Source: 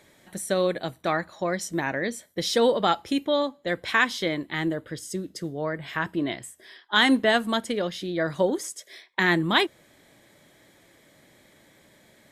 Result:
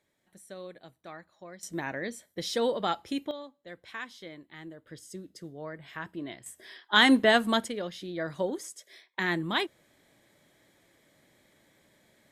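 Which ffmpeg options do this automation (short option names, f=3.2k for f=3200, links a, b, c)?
-af "asetnsamples=n=441:p=0,asendcmd='1.63 volume volume -7dB;3.31 volume volume -18dB;4.87 volume volume -11dB;6.46 volume volume -0.5dB;7.68 volume volume -7.5dB',volume=-19.5dB"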